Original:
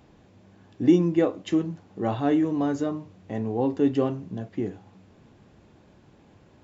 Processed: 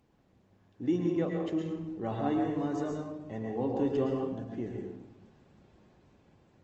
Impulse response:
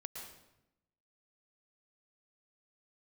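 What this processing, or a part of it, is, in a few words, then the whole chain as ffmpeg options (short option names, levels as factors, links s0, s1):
speakerphone in a meeting room: -filter_complex "[0:a]asettb=1/sr,asplit=3[s0][s1][s2];[s0]atrim=end=1.344[s3];[s1]atrim=start=1.34:end=2.57,asetpts=PTS-STARTPTS,afade=t=in:d=0.004:c=qsin,afade=t=out:st=1.226:d=0.004:c=qsin,highshelf=f=4700:g=-4.5[s4];[s2]atrim=start=2.566[s5];[s3][s4]acrossfade=d=0.004:c1=hsin:c2=qsin[s6];[s6][s5]acrossfade=d=0.004:c1=qsin:c2=hsin[s7];[1:a]atrim=start_sample=2205[s8];[s7][s8]afir=irnorm=-1:irlink=0,dynaudnorm=f=510:g=5:m=1.58,volume=0.447" -ar 48000 -c:a libopus -b:a 20k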